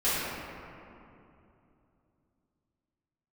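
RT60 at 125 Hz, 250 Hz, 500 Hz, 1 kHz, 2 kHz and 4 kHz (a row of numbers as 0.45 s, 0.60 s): 3.9 s, 3.6 s, 2.9 s, 2.7 s, 2.1 s, 1.4 s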